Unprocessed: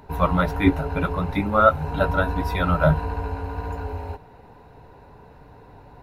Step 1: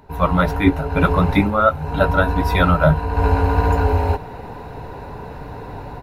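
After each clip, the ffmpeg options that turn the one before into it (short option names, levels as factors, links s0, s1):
-af "dynaudnorm=f=130:g=3:m=5.96,volume=0.891"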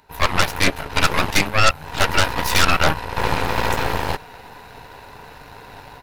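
-af "tiltshelf=f=1100:g=-9.5,aeval=exprs='0.794*(cos(1*acos(clip(val(0)/0.794,-1,1)))-cos(1*PI/2))+0.316*(cos(8*acos(clip(val(0)/0.794,-1,1)))-cos(8*PI/2))':c=same,volume=0.631"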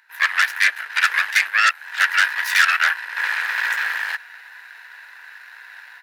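-af "highpass=f=1700:t=q:w=6.7,volume=0.562"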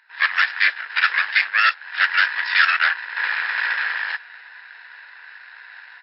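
-ar 12000 -c:a libmp3lame -b:a 32k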